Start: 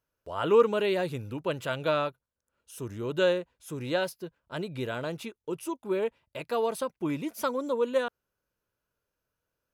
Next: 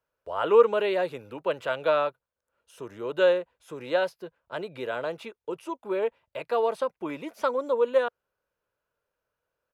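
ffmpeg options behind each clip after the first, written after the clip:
-filter_complex "[0:a]acrossover=split=8200[a][b];[b]acompressor=threshold=-54dB:ratio=4:attack=1:release=60[c];[a][c]amix=inputs=2:normalize=0,firequalizer=gain_entry='entry(280,0);entry(490,9);entry(6000,-2)':delay=0.05:min_phase=1,acrossover=split=190|1200|5300[d][e][f][g];[d]acompressor=threshold=-50dB:ratio=6[h];[h][e][f][g]amix=inputs=4:normalize=0,volume=-4.5dB"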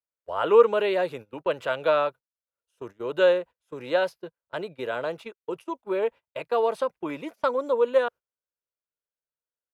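-af "agate=range=-22dB:threshold=-40dB:ratio=16:detection=peak,volume=1.5dB"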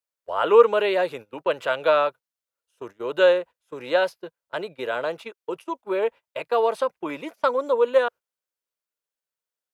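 -af "lowshelf=f=240:g=-9,volume=4dB"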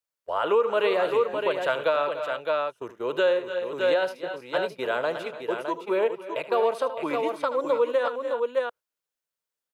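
-af "aecho=1:1:75|287|315|612:0.211|0.158|0.141|0.447,alimiter=limit=-14dB:level=0:latency=1:release=224"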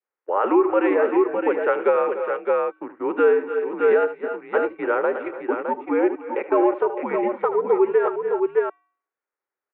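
-af "bandreject=f=404.4:t=h:w=4,bandreject=f=808.8:t=h:w=4,bandreject=f=1.2132k:t=h:w=4,bandreject=f=1.6176k:t=h:w=4,bandreject=f=2.022k:t=h:w=4,bandreject=f=2.4264k:t=h:w=4,bandreject=f=2.8308k:t=h:w=4,bandreject=f=3.2352k:t=h:w=4,bandreject=f=3.6396k:t=h:w=4,bandreject=f=4.044k:t=h:w=4,bandreject=f=4.4484k:t=h:w=4,bandreject=f=4.8528k:t=h:w=4,bandreject=f=5.2572k:t=h:w=4,bandreject=f=5.6616k:t=h:w=4,bandreject=f=6.066k:t=h:w=4,bandreject=f=6.4704k:t=h:w=4,bandreject=f=6.8748k:t=h:w=4,bandreject=f=7.2792k:t=h:w=4,bandreject=f=7.6836k:t=h:w=4,bandreject=f=8.088k:t=h:w=4,bandreject=f=8.4924k:t=h:w=4,bandreject=f=8.8968k:t=h:w=4,bandreject=f=9.3012k:t=h:w=4,bandreject=f=9.7056k:t=h:w=4,bandreject=f=10.11k:t=h:w=4,bandreject=f=10.5144k:t=h:w=4,bandreject=f=10.9188k:t=h:w=4,highpass=f=400:t=q:w=0.5412,highpass=f=400:t=q:w=1.307,lowpass=f=2.2k:t=q:w=0.5176,lowpass=f=2.2k:t=q:w=0.7071,lowpass=f=2.2k:t=q:w=1.932,afreqshift=-91,adynamicequalizer=threshold=0.00631:dfrequency=1100:dqfactor=2.6:tfrequency=1100:tqfactor=2.6:attack=5:release=100:ratio=0.375:range=2.5:mode=cutabove:tftype=bell,volume=6dB"

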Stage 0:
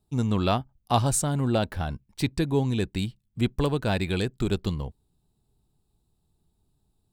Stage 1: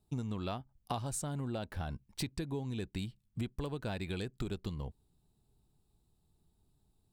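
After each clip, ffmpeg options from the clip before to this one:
-af "acompressor=threshold=-32dB:ratio=10,volume=-2dB"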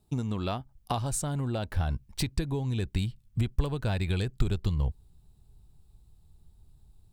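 -af "asubboost=boost=4:cutoff=120,volume=6.5dB"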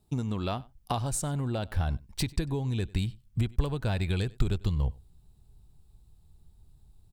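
-af "aecho=1:1:97:0.0668"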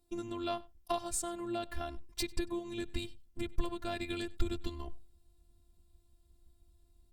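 -af "afftfilt=real='hypot(re,im)*cos(PI*b)':imag='0':win_size=512:overlap=0.75" -ar 48000 -c:a libopus -b:a 48k

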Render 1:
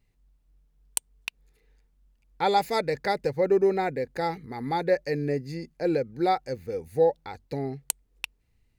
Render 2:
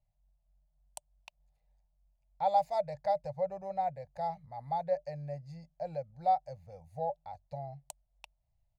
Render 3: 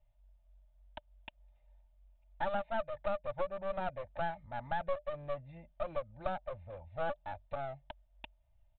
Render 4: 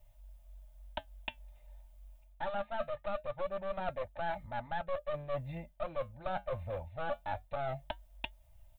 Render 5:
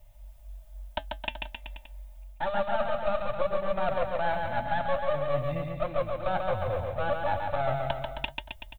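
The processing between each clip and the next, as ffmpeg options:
-af "firequalizer=gain_entry='entry(160,0);entry(260,-25);entry(420,-28);entry(600,11);entry(1400,-14);entry(3300,-10);entry(6500,-8);entry(15000,-19)':delay=0.05:min_phase=1,volume=-8.5dB"
-af "aecho=1:1:3.3:0.76,acompressor=threshold=-33dB:ratio=6,aresample=8000,aeval=exprs='clip(val(0),-1,0.00316)':c=same,aresample=44100,volume=4.5dB"
-af "crystalizer=i=1.5:c=0,flanger=delay=3:depth=5.1:regen=-76:speed=0.23:shape=triangular,areverse,acompressor=threshold=-46dB:ratio=6,areverse,volume=13.5dB"
-af "aecho=1:1:140|266|379.4|481.5|573.3:0.631|0.398|0.251|0.158|0.1,volume=7dB"

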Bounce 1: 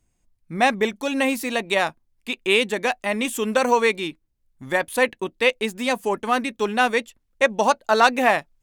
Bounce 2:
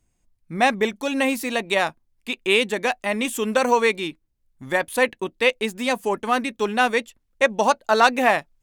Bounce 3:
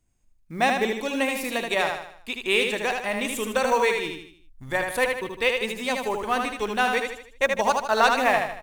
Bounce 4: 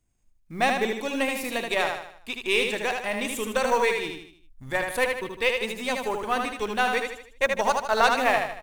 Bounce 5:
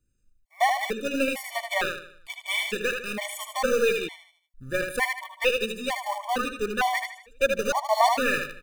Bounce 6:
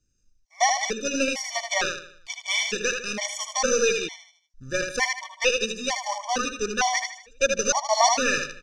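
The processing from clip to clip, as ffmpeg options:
-af anull
-af "acrusher=bits=8:mode=log:mix=0:aa=0.000001,asubboost=boost=7.5:cutoff=80,aecho=1:1:77|154|231|308|385:0.596|0.262|0.115|0.0507|0.0223,volume=-3.5dB"
-af "aeval=exprs='if(lt(val(0),0),0.708*val(0),val(0))':c=same"
-filter_complex "[0:a]asplit=2[a][b];[b]acrusher=bits=3:mix=0:aa=0.000001,volume=-10dB[c];[a][c]amix=inputs=2:normalize=0,afftfilt=real='re*gt(sin(2*PI*1.1*pts/sr)*(1-2*mod(floor(b*sr/1024/590),2)),0)':imag='im*gt(sin(2*PI*1.1*pts/sr)*(1-2*mod(floor(b*sr/1024/590),2)),0)':win_size=1024:overlap=0.75"
-af "lowpass=f=5.8k:t=q:w=8.9"

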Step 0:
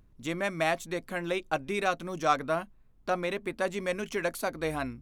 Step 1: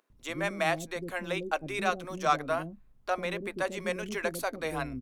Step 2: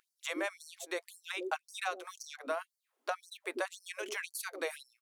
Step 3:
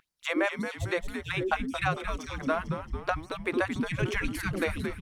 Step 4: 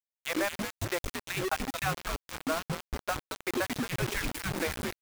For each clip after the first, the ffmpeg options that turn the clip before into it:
-filter_complex "[0:a]acrossover=split=380[a][b];[a]adelay=100[c];[c][b]amix=inputs=2:normalize=0"
-af "equalizer=f=9.3k:w=3.7:g=3,acompressor=threshold=-32dB:ratio=6,afftfilt=real='re*gte(b*sr/1024,240*pow(4400/240,0.5+0.5*sin(2*PI*1.9*pts/sr)))':imag='im*gte(b*sr/1024,240*pow(4400/240,0.5+0.5*sin(2*PI*1.9*pts/sr)))':win_size=1024:overlap=0.75,volume=1.5dB"
-filter_complex "[0:a]bass=f=250:g=11,treble=f=4k:g=-12,asplit=7[a][b][c][d][e][f][g];[b]adelay=224,afreqshift=-110,volume=-8dB[h];[c]adelay=448,afreqshift=-220,volume=-13.7dB[i];[d]adelay=672,afreqshift=-330,volume=-19.4dB[j];[e]adelay=896,afreqshift=-440,volume=-25dB[k];[f]adelay=1120,afreqshift=-550,volume=-30.7dB[l];[g]adelay=1344,afreqshift=-660,volume=-36.4dB[m];[a][h][i][j][k][l][m]amix=inputs=7:normalize=0,asubboost=boost=9:cutoff=180,volume=8.5dB"
-af "acrusher=bits=4:mix=0:aa=0.000001,volume=-3.5dB"

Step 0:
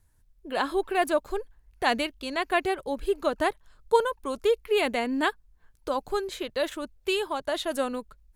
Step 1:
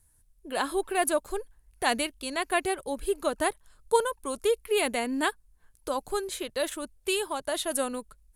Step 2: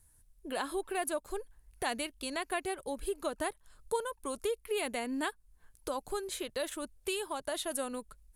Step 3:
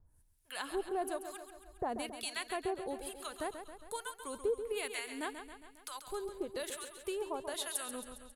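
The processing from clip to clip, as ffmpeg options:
-af "equalizer=f=10k:t=o:w=0.87:g=14.5,volume=-2dB"
-af "acompressor=threshold=-37dB:ratio=2"
-filter_complex "[0:a]acrossover=split=1100[a][b];[a]aeval=exprs='val(0)*(1-1/2+1/2*cos(2*PI*1.1*n/s))':c=same[c];[b]aeval=exprs='val(0)*(1-1/2-1/2*cos(2*PI*1.1*n/s))':c=same[d];[c][d]amix=inputs=2:normalize=0,aecho=1:1:136|272|408|544|680|816|952:0.355|0.206|0.119|0.0692|0.0402|0.0233|0.0135,volume=1dB"

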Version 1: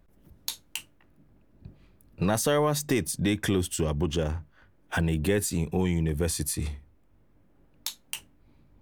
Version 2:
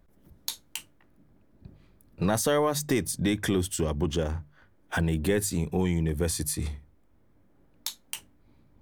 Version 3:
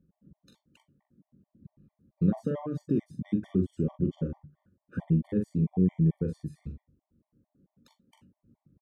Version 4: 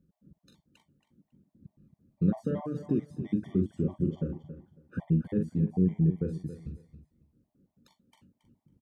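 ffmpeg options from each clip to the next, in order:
-af "equalizer=f=2.7k:w=6.4:g=-4.5,bandreject=f=50:t=h:w=6,bandreject=f=100:t=h:w=6,bandreject=f=150:t=h:w=6"
-af "bandpass=f=190:t=q:w=1.6:csg=0,aecho=1:1:43|62:0.501|0.168,afftfilt=real='re*gt(sin(2*PI*4.5*pts/sr)*(1-2*mod(floor(b*sr/1024/600),2)),0)':imag='im*gt(sin(2*PI*4.5*pts/sr)*(1-2*mod(floor(b*sr/1024/600),2)),0)':win_size=1024:overlap=0.75,volume=4dB"
-af "aecho=1:1:275|550:0.251|0.0477,volume=-1dB"

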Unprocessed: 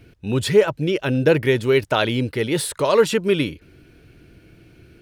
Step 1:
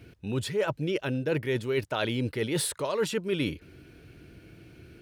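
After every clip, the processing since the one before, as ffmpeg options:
-af "highpass=45,areverse,acompressor=threshold=-24dB:ratio=6,areverse,volume=-1.5dB"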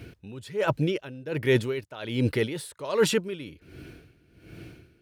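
-af "aeval=exprs='val(0)*pow(10,-19*(0.5-0.5*cos(2*PI*1.3*n/s))/20)':c=same,volume=7.5dB"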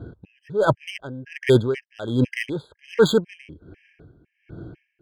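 -af "adynamicsmooth=sensitivity=4:basefreq=1.5k,afftfilt=real='re*gt(sin(2*PI*2*pts/sr)*(1-2*mod(floor(b*sr/1024/1600),2)),0)':imag='im*gt(sin(2*PI*2*pts/sr)*(1-2*mod(floor(b*sr/1024/1600),2)),0)':win_size=1024:overlap=0.75,volume=7dB"

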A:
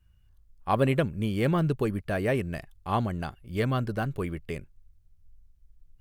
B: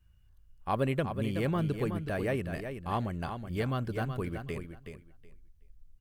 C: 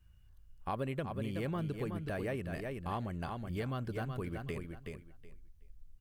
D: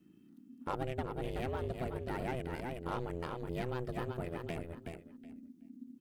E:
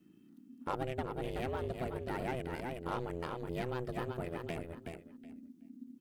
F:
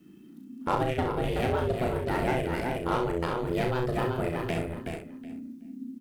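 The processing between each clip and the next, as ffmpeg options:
-filter_complex "[0:a]asplit=2[a][b];[b]acompressor=threshold=-34dB:ratio=6,volume=0.5dB[c];[a][c]amix=inputs=2:normalize=0,aecho=1:1:373|746|1119:0.398|0.0717|0.0129,volume=-7.5dB"
-af "acompressor=threshold=-38dB:ratio=2.5,volume=1dB"
-af "aeval=exprs='0.0596*(cos(1*acos(clip(val(0)/0.0596,-1,1)))-cos(1*PI/2))+0.00299*(cos(8*acos(clip(val(0)/0.0596,-1,1)))-cos(8*PI/2))':c=same,aeval=exprs='val(0)*sin(2*PI*250*n/s)':c=same,volume=2dB"
-af "lowshelf=f=140:g=-4,volume=1dB"
-af "aecho=1:1:35|65:0.562|0.447,volume=8.5dB"

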